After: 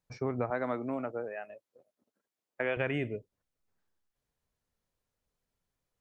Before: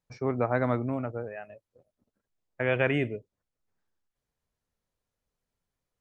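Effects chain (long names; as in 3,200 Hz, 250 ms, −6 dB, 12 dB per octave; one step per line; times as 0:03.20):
0:00.50–0:02.77: high-pass filter 250 Hz 12 dB per octave
downward compressor 3 to 1, threshold −29 dBFS, peak gain reduction 7.5 dB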